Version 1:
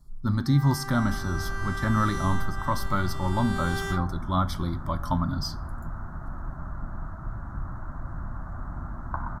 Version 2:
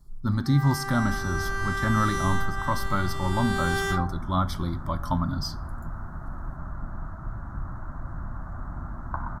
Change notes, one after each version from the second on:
first sound +5.0 dB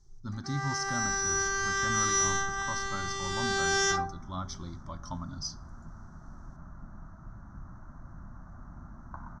first sound +12.0 dB; second sound: add peaking EQ 200 Hz +6 dB 0.85 oct; master: add four-pole ladder low-pass 6.3 kHz, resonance 80%

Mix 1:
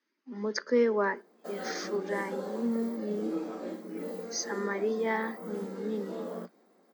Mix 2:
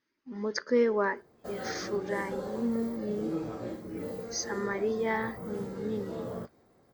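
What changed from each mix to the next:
master: remove steep high-pass 180 Hz 96 dB/octave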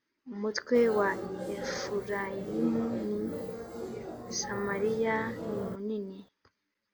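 background: entry -0.70 s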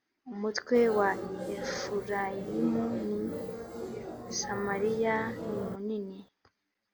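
speech: remove Butterworth band-stop 740 Hz, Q 4.4

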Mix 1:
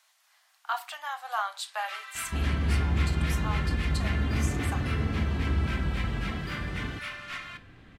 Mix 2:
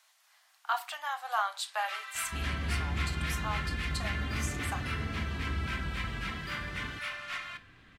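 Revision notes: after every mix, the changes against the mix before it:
second sound -7.5 dB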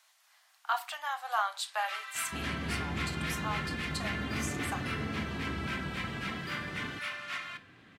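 second sound +4.0 dB; master: add high-pass 140 Hz 12 dB/octave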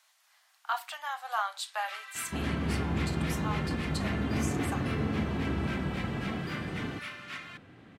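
second sound +6.0 dB; reverb: off

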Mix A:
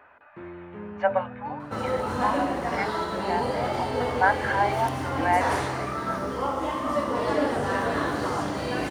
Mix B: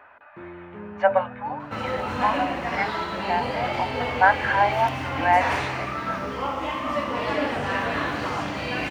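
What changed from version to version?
speech +4.0 dB; second sound: add fifteen-band graphic EQ 400 Hz -5 dB, 2.5 kHz +11 dB, 10 kHz -10 dB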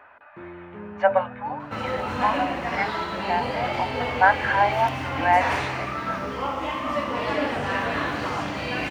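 no change

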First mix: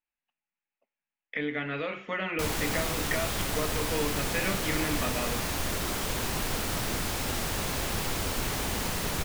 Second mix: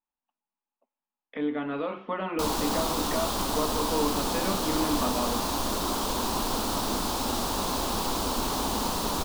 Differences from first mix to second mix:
speech: add distance through air 290 m; master: add graphic EQ 125/250/1000/2000/4000 Hz -9/+8/+11/-12/+6 dB

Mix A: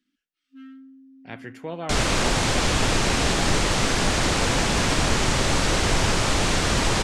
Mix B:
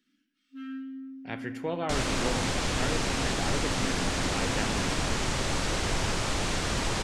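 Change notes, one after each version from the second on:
second sound -7.5 dB; reverb: on, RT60 1.3 s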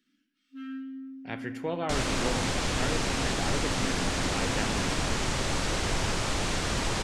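no change

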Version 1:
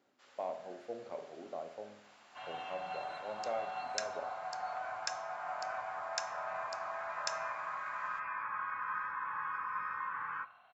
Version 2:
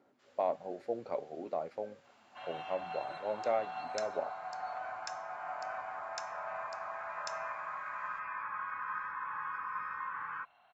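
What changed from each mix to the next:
speech +9.0 dB; first sound -5.5 dB; reverb: off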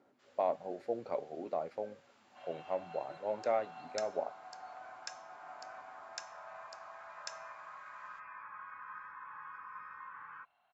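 second sound -9.0 dB

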